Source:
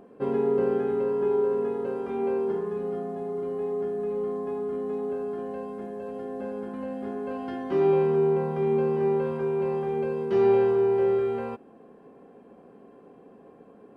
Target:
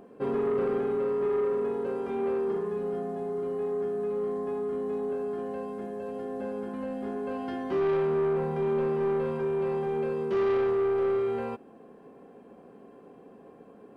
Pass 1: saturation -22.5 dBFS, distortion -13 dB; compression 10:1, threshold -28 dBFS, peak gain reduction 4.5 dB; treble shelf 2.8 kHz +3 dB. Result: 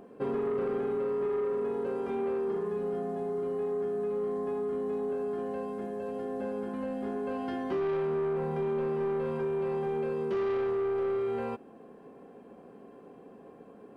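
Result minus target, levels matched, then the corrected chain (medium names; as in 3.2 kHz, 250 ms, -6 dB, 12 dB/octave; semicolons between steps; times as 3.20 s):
compression: peak gain reduction +4.5 dB
saturation -22.5 dBFS, distortion -13 dB; treble shelf 2.8 kHz +3 dB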